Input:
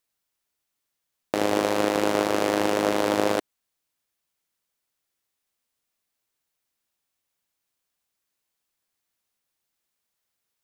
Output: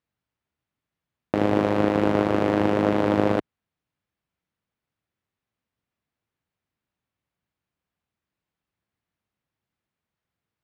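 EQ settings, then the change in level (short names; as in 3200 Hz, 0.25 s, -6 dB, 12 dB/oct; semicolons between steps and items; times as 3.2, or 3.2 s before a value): HPF 63 Hz; tone controls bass +12 dB, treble -9 dB; high shelf 5000 Hz -11.5 dB; 0.0 dB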